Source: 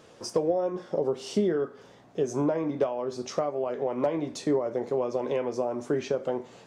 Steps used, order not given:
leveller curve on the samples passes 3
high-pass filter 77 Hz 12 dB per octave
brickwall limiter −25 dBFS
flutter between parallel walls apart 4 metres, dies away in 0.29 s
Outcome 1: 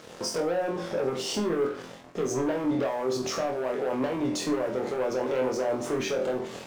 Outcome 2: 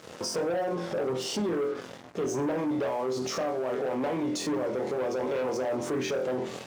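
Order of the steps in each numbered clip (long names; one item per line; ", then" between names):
high-pass filter, then leveller curve on the samples, then brickwall limiter, then flutter between parallel walls
flutter between parallel walls, then leveller curve on the samples, then brickwall limiter, then high-pass filter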